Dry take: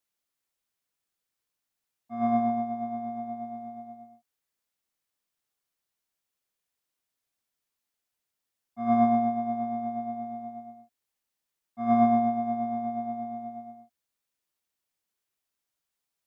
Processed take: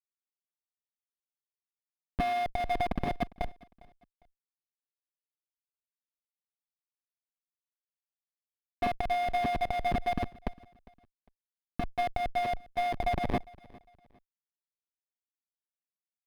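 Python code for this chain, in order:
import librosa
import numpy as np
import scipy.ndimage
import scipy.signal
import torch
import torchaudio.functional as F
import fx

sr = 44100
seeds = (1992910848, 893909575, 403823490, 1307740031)

p1 = fx.spec_dropout(x, sr, seeds[0], share_pct=29)
p2 = scipy.signal.sosfilt(scipy.signal.butter(4, 480.0, 'highpass', fs=sr, output='sos'), p1)
p3 = fx.notch(p2, sr, hz=2100.0, q=15.0)
p4 = fx.rider(p3, sr, range_db=3, speed_s=2.0)
p5 = p3 + (p4 * librosa.db_to_amplitude(2.0))
p6 = fx.schmitt(p5, sr, flips_db=-26.0)
p7 = fx.cheby_harmonics(p6, sr, harmonics=(8,), levels_db=(-10,), full_scale_db=-23.5)
p8 = fx.air_absorb(p7, sr, metres=210.0)
p9 = p8 + fx.echo_feedback(p8, sr, ms=404, feedback_pct=31, wet_db=-23.0, dry=0)
p10 = np.interp(np.arange(len(p9)), np.arange(len(p9))[::3], p9[::3])
y = p10 * librosa.db_to_amplitude(1.5)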